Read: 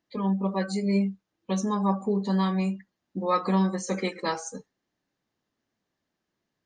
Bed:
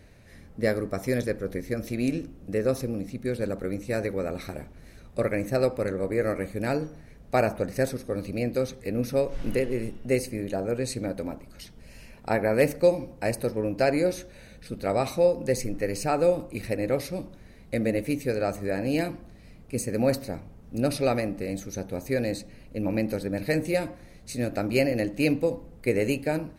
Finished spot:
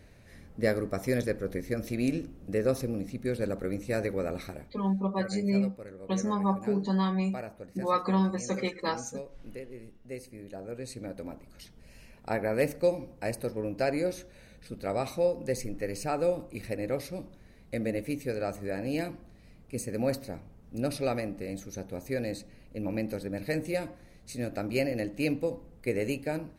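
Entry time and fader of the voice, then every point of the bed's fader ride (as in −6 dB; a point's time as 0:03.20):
4.60 s, −2.5 dB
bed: 0:04.37 −2 dB
0:05.12 −16.5 dB
0:10.08 −16.5 dB
0:11.46 −5.5 dB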